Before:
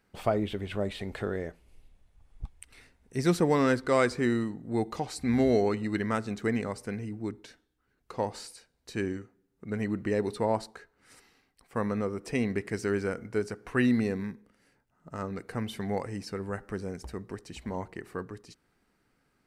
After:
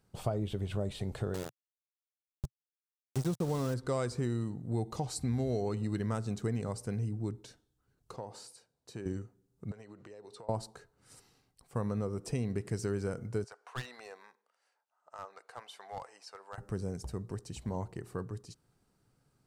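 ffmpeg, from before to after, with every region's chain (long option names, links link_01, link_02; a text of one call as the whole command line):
ffmpeg -i in.wav -filter_complex "[0:a]asettb=1/sr,asplit=3[link_01][link_02][link_03];[link_01]atrim=end=1.344[link_04];[link_02]atrim=start=1.34:end=3.74,asetpts=PTS-STARTPTS,afade=type=in:duration=0.004:curve=qsin,afade=type=out:start_time=2.396:duration=0.004:curve=qsin,deesser=1,aeval=exprs='val(0)*gte(abs(val(0)),0.0282)':channel_layout=same[link_05];[link_03]atrim=start=3.736[link_06];[link_04][link_05]acrossfade=duration=0.004:curve1=hsin:curve2=qsin[link_07];[link_07][link_06]acrossfade=duration=0.004:curve1=qsin:curve2=hsin,asettb=1/sr,asplit=3[link_08][link_09][link_10];[link_08]atrim=end=8.164[link_11];[link_09]atrim=start=8.16:end=9.06,asetpts=PTS-STARTPTS,afade=type=in:duration=0.004:curve=qsin,afade=type=out:start_time=0.896:duration=0.004:curve=qsin,highpass=frequency=330:poles=1,highshelf=frequency=2700:gain=-8,acompressor=threshold=-37dB:ratio=3:attack=3.2:release=140:knee=1:detection=peak[link_12];[link_10]atrim=start=9.056[link_13];[link_11][link_12]acrossfade=duration=0.004:curve1=hsin:curve2=qsin[link_14];[link_14][link_13]acrossfade=duration=0.004:curve1=qsin:curve2=hsin,asettb=1/sr,asplit=3[link_15][link_16][link_17];[link_15]atrim=end=9.714[link_18];[link_16]atrim=start=9.71:end=10.49,asetpts=PTS-STARTPTS,afade=type=in:duration=0.004:curve=qsin,afade=type=out:start_time=0.776:duration=0.004:curve=qsin,acrossover=split=380 7900:gain=0.112 1 0.141[link_19][link_20][link_21];[link_19][link_20][link_21]amix=inputs=3:normalize=0,acompressor=threshold=-44dB:ratio=12:attack=3.2:release=140:knee=1:detection=peak[link_22];[link_17]atrim=start=10.486[link_23];[link_18][link_22]acrossfade=duration=0.004:curve1=hsin:curve2=qsin[link_24];[link_24][link_23]acrossfade=duration=0.004:curve1=qsin:curve2=hsin,asettb=1/sr,asplit=3[link_25][link_26][link_27];[link_25]atrim=end=13.444[link_28];[link_26]atrim=start=13.44:end=16.58,asetpts=PTS-STARTPTS,afade=type=in:duration=0.004:curve=qsin,afade=type=out:start_time=3.136:duration=0.004:curve=qsin,highpass=frequency=720:width=0.5412,highpass=frequency=720:width=1.3066,aemphasis=mode=reproduction:type=bsi,aeval=exprs='clip(val(0),-1,0.0188)':channel_layout=same[link_29];[link_27]atrim=start=16.576[link_30];[link_28][link_29]acrossfade=duration=0.004:curve1=hsin:curve2=qsin[link_31];[link_31][link_30]acrossfade=duration=0.004:curve1=qsin:curve2=hsin,equalizer=frequency=125:width_type=o:width=1:gain=10,equalizer=frequency=250:width_type=o:width=1:gain=-4,equalizer=frequency=2000:width_type=o:width=1:gain=-10,equalizer=frequency=8000:width_type=o:width=1:gain=4,acompressor=threshold=-28dB:ratio=4,volume=-1.5dB" out.wav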